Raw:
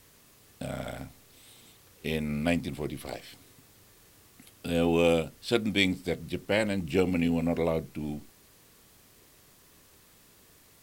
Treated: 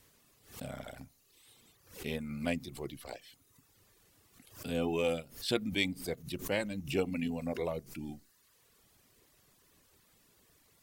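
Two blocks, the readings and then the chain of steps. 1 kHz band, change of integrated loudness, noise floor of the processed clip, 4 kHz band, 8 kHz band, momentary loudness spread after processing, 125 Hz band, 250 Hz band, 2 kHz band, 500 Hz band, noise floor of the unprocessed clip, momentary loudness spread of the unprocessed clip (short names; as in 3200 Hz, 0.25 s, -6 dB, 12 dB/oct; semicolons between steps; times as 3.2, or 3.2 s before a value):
-7.0 dB, -7.0 dB, -68 dBFS, -5.0 dB, -3.0 dB, 16 LU, -8.0 dB, -8.0 dB, -6.5 dB, -7.0 dB, -59 dBFS, 16 LU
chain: reverb removal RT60 0.96 s; short-mantissa float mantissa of 8-bit; backwards sustainer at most 130 dB/s; gain -6 dB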